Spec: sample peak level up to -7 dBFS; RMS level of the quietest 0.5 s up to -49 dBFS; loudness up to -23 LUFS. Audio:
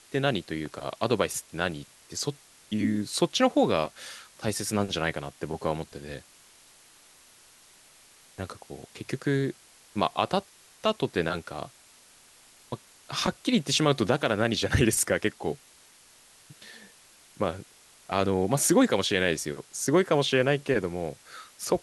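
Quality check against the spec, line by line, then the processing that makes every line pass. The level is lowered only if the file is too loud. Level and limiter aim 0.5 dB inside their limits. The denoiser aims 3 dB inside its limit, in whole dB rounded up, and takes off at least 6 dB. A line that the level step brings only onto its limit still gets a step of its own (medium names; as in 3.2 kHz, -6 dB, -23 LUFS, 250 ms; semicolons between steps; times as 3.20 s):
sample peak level -8.5 dBFS: pass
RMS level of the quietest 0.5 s -56 dBFS: pass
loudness -27.5 LUFS: pass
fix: none needed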